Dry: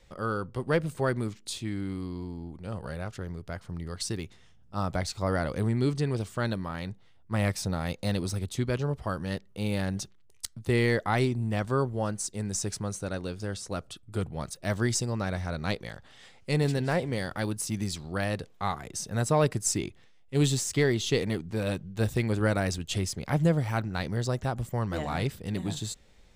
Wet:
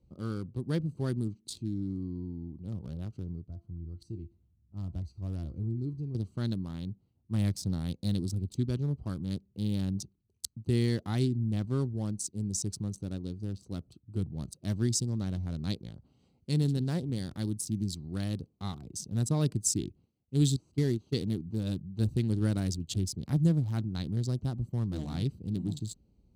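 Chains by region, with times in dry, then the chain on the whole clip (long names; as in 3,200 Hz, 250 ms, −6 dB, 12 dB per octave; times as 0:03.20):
0:03.47–0:06.15: parametric band 68 Hz +12 dB 1.3 octaves + tuned comb filter 340 Hz, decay 0.3 s, mix 70% + one half of a high-frequency compander decoder only
0:20.56–0:21.14: linear delta modulator 64 kbit/s, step −42 dBFS + noise gate −27 dBFS, range −14 dB
whole clip: adaptive Wiener filter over 25 samples; high-pass filter 56 Hz; flat-topped bell 1,100 Hz −14 dB 2.9 octaves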